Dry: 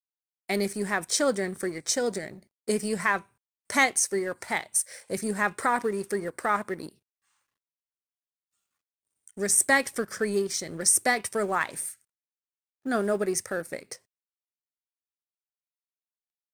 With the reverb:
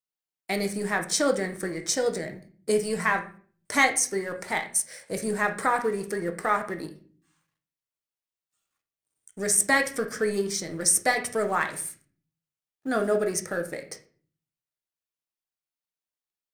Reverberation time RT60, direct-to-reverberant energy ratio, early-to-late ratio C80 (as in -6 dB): 0.45 s, 4.5 dB, 17.5 dB